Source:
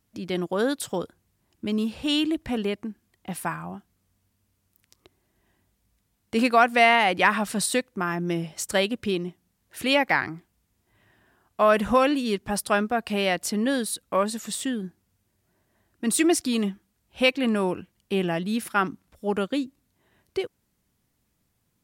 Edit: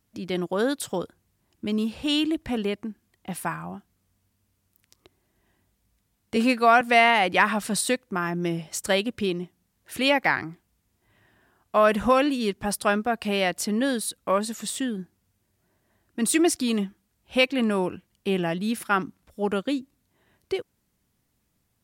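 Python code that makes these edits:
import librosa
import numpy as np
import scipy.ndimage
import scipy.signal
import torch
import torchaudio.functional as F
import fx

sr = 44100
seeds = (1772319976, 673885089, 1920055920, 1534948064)

y = fx.edit(x, sr, fx.stretch_span(start_s=6.36, length_s=0.3, factor=1.5), tone=tone)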